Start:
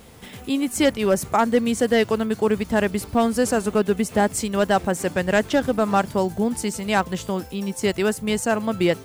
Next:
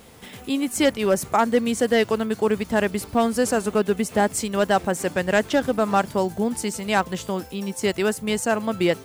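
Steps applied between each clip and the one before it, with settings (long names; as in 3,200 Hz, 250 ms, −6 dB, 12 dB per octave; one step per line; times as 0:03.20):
low-shelf EQ 150 Hz −5.5 dB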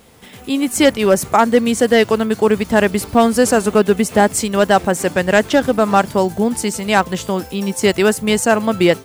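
automatic gain control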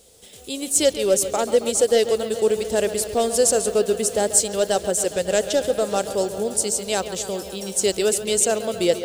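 octave-band graphic EQ 125/250/500/1,000/2,000/4,000/8,000 Hz −7/−9/+7/−11/−8/+4/+10 dB
on a send: bucket-brigade delay 137 ms, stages 4,096, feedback 77%, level −12.5 dB
on the sum: level −6 dB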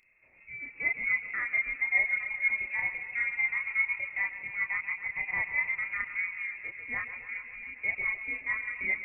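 voice inversion scrambler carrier 2,600 Hz
multi-voice chorus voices 2, 0.45 Hz, delay 30 ms, depth 2.4 ms
level −7.5 dB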